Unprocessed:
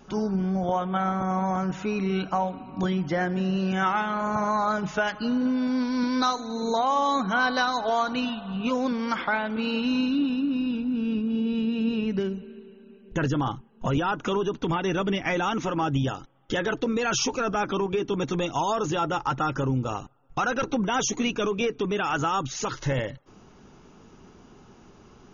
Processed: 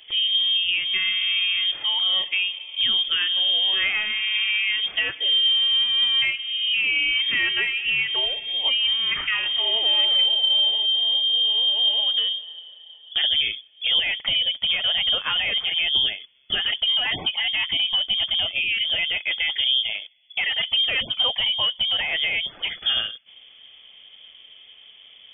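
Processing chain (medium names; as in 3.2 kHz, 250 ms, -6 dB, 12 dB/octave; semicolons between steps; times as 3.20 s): 8.46–10.86 s: chunks repeated in reverse 602 ms, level -11.5 dB; peaking EQ 240 Hz +5 dB 2 oct; frequency inversion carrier 3.4 kHz; 18.59–18.84 s: time-frequency box 430–1100 Hz -16 dB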